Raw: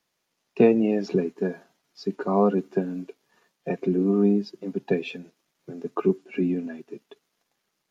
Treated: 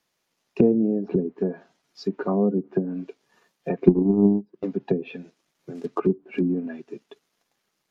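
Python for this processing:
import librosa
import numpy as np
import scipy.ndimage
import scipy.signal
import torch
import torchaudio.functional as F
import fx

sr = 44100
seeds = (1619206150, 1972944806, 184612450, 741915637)

y = fx.quant_companded(x, sr, bits=6, at=(5.75, 6.59))
y = fx.env_lowpass_down(y, sr, base_hz=400.0, full_db=-19.5)
y = fx.transient(y, sr, attack_db=11, sustain_db=-11, at=(3.86, 4.65), fade=0.02)
y = F.gain(torch.from_numpy(y), 1.5).numpy()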